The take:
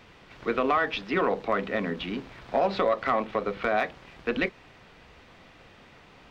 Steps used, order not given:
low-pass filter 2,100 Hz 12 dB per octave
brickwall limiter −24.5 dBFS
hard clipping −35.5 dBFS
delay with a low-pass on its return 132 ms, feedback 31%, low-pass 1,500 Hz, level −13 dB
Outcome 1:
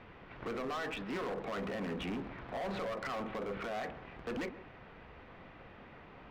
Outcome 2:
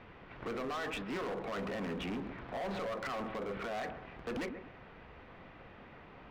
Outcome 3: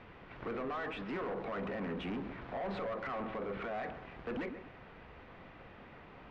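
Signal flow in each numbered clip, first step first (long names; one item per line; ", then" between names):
brickwall limiter, then low-pass filter, then hard clipping, then delay with a low-pass on its return
low-pass filter, then brickwall limiter, then delay with a low-pass on its return, then hard clipping
brickwall limiter, then delay with a low-pass on its return, then hard clipping, then low-pass filter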